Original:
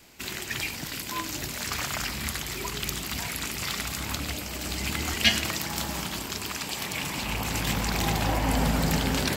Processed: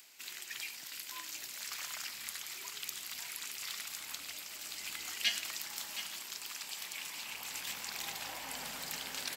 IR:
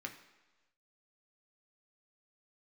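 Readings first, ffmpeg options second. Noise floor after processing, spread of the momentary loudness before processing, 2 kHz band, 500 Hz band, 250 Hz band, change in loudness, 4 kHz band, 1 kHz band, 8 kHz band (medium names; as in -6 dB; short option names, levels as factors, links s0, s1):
-48 dBFS, 7 LU, -11.5 dB, -21.5 dB, -28.0 dB, -11.0 dB, -9.5 dB, -16.5 dB, -8.0 dB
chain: -filter_complex "[0:a]lowpass=f=2500:p=1,aderivative,acompressor=mode=upward:threshold=0.00224:ratio=2.5,asplit=2[s0][s1];[s1]aecho=0:1:720:0.282[s2];[s0][s2]amix=inputs=2:normalize=0,volume=1.12"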